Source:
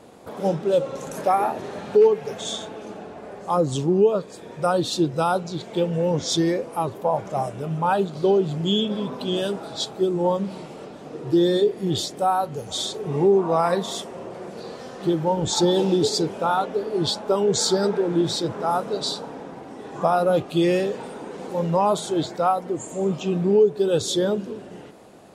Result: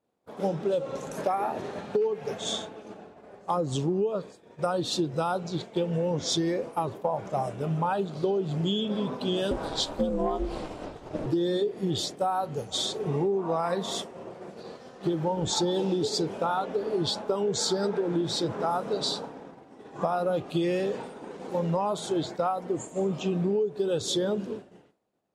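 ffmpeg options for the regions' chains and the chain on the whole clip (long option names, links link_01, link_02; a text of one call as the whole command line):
ffmpeg -i in.wav -filter_complex "[0:a]asettb=1/sr,asplit=3[link_01][link_02][link_03];[link_01]atrim=end=9.514[link_04];[link_02]atrim=start=9.51:end=11.26,asetpts=PTS-STARTPTS,afade=type=in:duration=0.004:curve=qsin,afade=type=out:start_time=1.746:duration=0.004:curve=qsin,acontrast=63,aeval=exprs='val(0)*sin(2*PI*150*n/s)':channel_layout=same[link_05];[link_03]atrim=start=11.256[link_06];[link_04][link_05]acrossfade=duration=0.004:curve1=hsin:curve2=qsin[link_07];[link_07][link_06]acrossfade=duration=0.004:curve1=qsin:curve2=hsin,agate=range=-33dB:threshold=-29dB:ratio=3:detection=peak,highshelf=frequency=10000:gain=-7.5,acompressor=threshold=-24dB:ratio=6" out.wav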